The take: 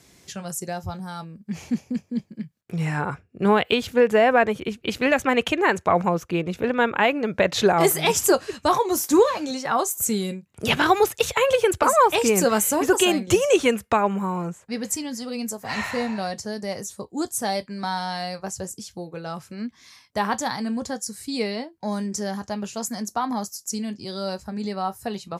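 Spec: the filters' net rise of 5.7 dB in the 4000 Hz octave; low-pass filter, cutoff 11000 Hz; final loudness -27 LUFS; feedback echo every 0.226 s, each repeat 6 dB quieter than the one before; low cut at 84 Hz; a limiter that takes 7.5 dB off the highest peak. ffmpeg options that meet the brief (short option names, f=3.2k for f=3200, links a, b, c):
-af "highpass=84,lowpass=11k,equalizer=f=4k:t=o:g=7.5,alimiter=limit=-10.5dB:level=0:latency=1,aecho=1:1:226|452|678|904|1130|1356:0.501|0.251|0.125|0.0626|0.0313|0.0157,volume=-4dB"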